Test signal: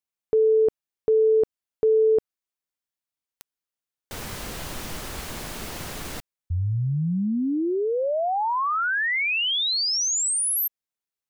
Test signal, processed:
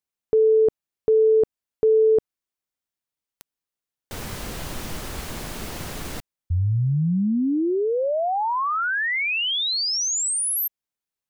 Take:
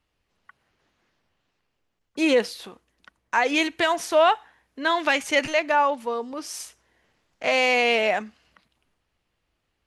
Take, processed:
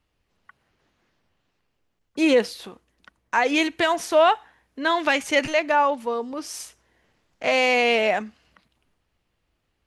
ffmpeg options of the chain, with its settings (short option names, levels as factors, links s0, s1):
-af "lowshelf=f=470:g=3.5"